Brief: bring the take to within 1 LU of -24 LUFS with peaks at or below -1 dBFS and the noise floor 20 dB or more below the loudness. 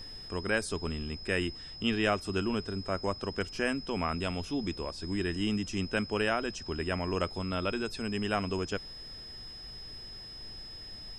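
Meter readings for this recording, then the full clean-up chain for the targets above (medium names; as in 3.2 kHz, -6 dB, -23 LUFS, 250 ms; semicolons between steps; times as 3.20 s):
steady tone 5.1 kHz; tone level -44 dBFS; noise floor -46 dBFS; noise floor target -54 dBFS; loudness -33.5 LUFS; peak level -15.0 dBFS; loudness target -24.0 LUFS
-> band-stop 5.1 kHz, Q 30; noise print and reduce 8 dB; trim +9.5 dB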